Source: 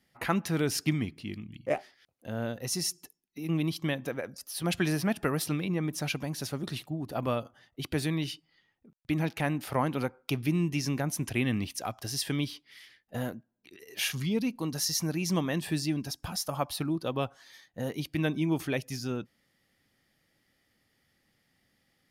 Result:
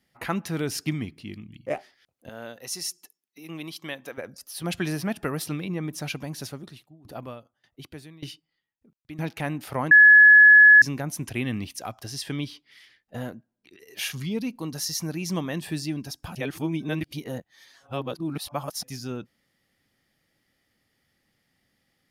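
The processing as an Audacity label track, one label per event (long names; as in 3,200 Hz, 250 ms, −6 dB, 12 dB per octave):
2.290000	4.180000	high-pass filter 650 Hz 6 dB per octave
6.460000	9.190000	tremolo with a ramp in dB decaying 1.7 Hz, depth 21 dB
9.910000	10.820000	beep over 1,700 Hz −8.5 dBFS
12.040000	13.830000	high-shelf EQ 11,000 Hz −9.5 dB
16.350000	18.830000	reverse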